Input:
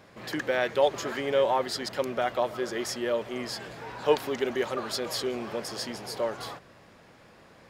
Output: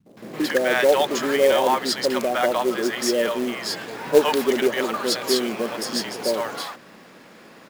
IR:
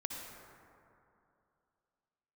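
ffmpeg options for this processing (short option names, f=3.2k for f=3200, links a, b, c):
-filter_complex "[0:a]lowshelf=f=130:t=q:w=1.5:g=-13.5,acrossover=split=160|680[a][b][c];[b]adelay=60[d];[c]adelay=170[e];[a][d][e]amix=inputs=3:normalize=0,acrusher=bits=4:mode=log:mix=0:aa=0.000001,volume=8.5dB"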